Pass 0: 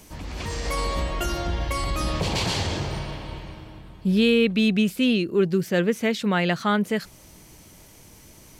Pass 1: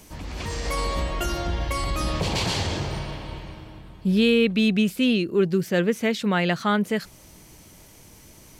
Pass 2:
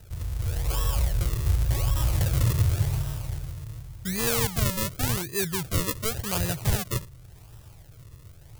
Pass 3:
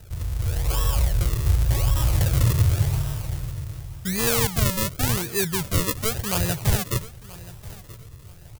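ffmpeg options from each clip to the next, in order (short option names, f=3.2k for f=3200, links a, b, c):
-af anull
-af "acrusher=samples=39:mix=1:aa=0.000001:lfo=1:lforange=39:lforate=0.89,lowshelf=f=160:t=q:w=3:g=10.5,crystalizer=i=3:c=0,volume=-8.5dB"
-af "aecho=1:1:979|1958:0.112|0.0292,volume=3.5dB"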